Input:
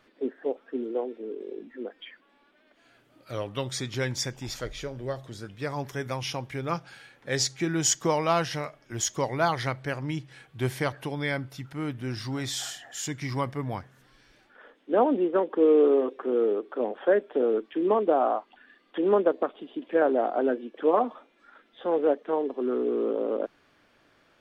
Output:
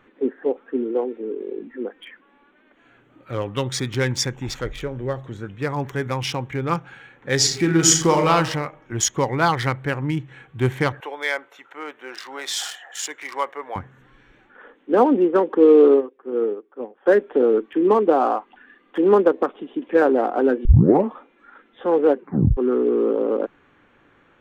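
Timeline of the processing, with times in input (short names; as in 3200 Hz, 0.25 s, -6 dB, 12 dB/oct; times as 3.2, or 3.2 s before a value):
7.36–8.29 reverb throw, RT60 0.87 s, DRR 2 dB
11–13.76 HPF 480 Hz 24 dB/oct
15.94–17.06 upward expander 2.5:1, over -33 dBFS
20.65 tape start 0.45 s
22.13 tape stop 0.44 s
whole clip: Wiener smoothing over 9 samples; bell 640 Hz -11 dB 0.2 oct; gain +8 dB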